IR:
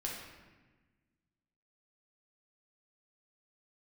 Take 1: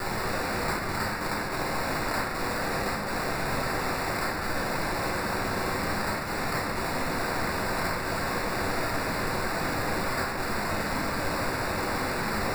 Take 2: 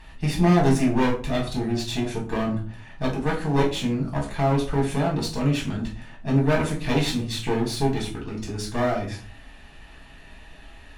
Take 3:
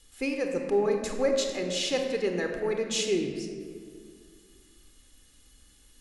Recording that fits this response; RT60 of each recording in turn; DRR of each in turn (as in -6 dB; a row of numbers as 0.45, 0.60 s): 1; 1.3, 0.40, 2.0 s; -3.0, -3.5, 3.5 dB